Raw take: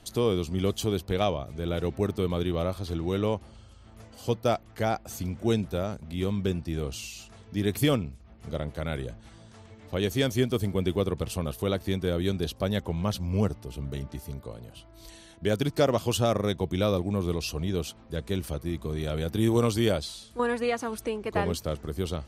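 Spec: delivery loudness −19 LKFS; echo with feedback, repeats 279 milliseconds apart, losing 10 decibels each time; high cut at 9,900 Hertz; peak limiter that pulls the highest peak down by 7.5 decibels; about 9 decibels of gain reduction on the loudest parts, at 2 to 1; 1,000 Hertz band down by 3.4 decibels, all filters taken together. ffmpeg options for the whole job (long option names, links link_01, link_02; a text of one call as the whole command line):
ffmpeg -i in.wav -af "lowpass=9900,equalizer=frequency=1000:width_type=o:gain=-5,acompressor=threshold=-36dB:ratio=2,alimiter=level_in=3dB:limit=-24dB:level=0:latency=1,volume=-3dB,aecho=1:1:279|558|837|1116:0.316|0.101|0.0324|0.0104,volume=20dB" out.wav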